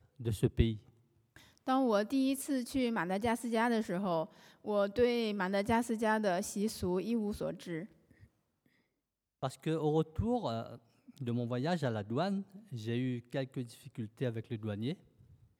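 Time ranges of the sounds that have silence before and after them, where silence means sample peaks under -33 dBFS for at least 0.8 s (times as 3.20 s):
1.68–7.79 s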